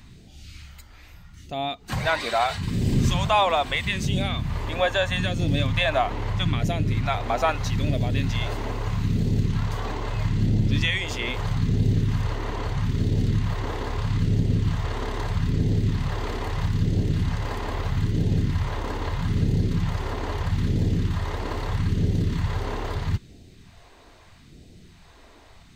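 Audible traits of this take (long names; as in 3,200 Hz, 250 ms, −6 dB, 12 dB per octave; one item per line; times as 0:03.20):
phaser sweep stages 2, 0.78 Hz, lowest notch 140–1,100 Hz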